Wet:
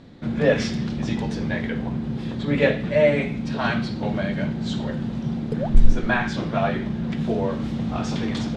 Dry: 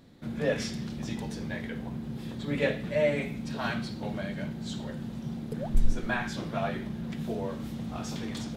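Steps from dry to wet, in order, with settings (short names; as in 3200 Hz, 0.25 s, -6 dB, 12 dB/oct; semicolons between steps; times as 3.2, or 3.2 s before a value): in parallel at +2.5 dB: vocal rider within 3 dB 2 s; on the sum: air absorption 100 m; gain +1.5 dB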